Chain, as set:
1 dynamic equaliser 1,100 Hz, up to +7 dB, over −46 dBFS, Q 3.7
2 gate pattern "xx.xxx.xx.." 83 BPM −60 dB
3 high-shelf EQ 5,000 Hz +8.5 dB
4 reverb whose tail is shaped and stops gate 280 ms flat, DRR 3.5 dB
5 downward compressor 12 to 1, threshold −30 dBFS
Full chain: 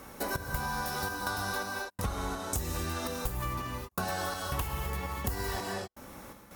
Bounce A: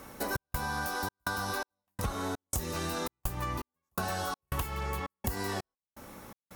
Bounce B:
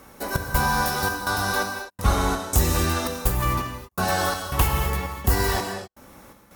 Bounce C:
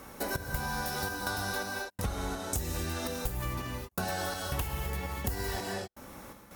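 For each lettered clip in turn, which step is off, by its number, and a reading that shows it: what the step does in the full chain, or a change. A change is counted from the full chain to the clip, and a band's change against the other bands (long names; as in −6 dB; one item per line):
4, change in momentary loudness spread +5 LU
5, average gain reduction 8.0 dB
1, 1 kHz band −2.5 dB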